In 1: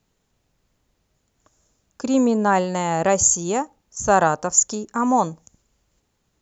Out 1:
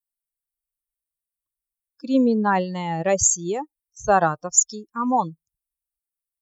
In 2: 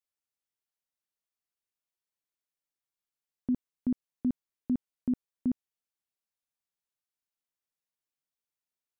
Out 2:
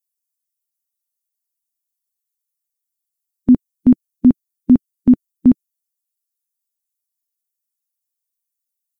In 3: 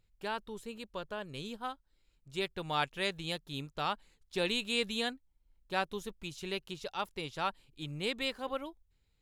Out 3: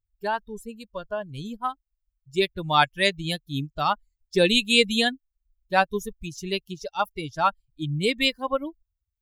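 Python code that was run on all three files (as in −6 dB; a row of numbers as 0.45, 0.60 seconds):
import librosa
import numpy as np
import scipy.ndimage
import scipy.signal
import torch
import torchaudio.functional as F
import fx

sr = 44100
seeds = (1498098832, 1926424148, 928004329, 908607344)

y = fx.bin_expand(x, sr, power=2.0)
y = y * 10.0 ** (-3 / 20.0) / np.max(np.abs(y))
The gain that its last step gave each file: +1.5, +19.5, +16.0 decibels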